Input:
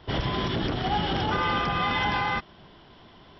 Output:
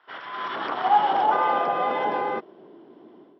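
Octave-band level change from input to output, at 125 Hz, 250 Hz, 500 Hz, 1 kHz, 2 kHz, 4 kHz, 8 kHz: -20.0 dB, -6.5 dB, +4.5 dB, +6.5 dB, -3.0 dB, -8.0 dB, no reading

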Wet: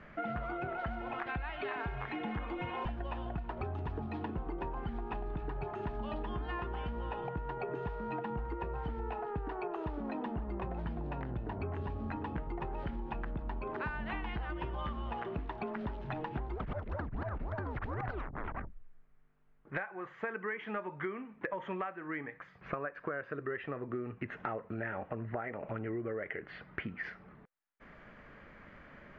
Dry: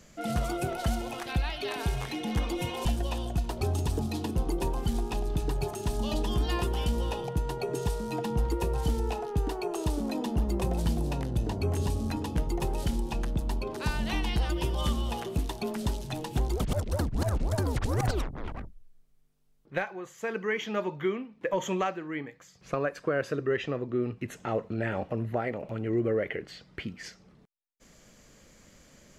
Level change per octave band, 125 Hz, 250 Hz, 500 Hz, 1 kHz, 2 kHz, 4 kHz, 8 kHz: -10.0 dB, -8.5 dB, -8.0 dB, -3.5 dB, -3.0 dB, -15.5 dB, under -35 dB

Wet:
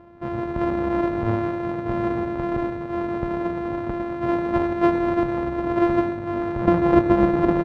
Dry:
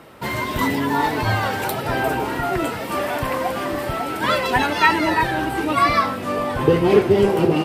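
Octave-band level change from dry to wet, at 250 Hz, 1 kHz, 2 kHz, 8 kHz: +2.0 dB, -7.0 dB, -12.0 dB, under -20 dB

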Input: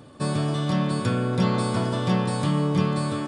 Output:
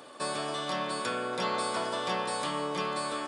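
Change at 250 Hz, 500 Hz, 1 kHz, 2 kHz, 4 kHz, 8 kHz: -15.5 dB, -5.0 dB, -1.0 dB, -0.5 dB, -0.5 dB, -0.5 dB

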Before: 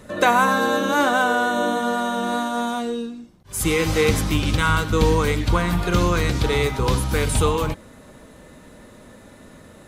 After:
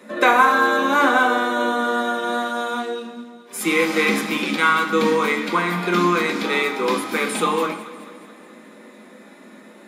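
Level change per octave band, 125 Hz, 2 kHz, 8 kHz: -12.5 dB, +4.0 dB, -3.5 dB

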